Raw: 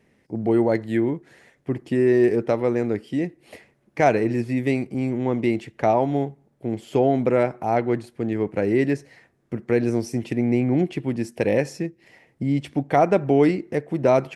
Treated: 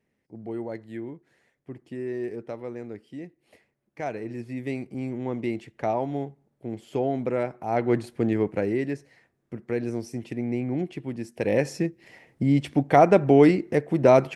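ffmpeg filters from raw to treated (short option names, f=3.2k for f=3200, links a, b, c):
-af "volume=12dB,afade=t=in:st=4.13:d=0.86:silence=0.446684,afade=t=in:st=7.66:d=0.44:silence=0.316228,afade=t=out:st=8.1:d=0.71:silence=0.298538,afade=t=in:st=11.33:d=0.48:silence=0.354813"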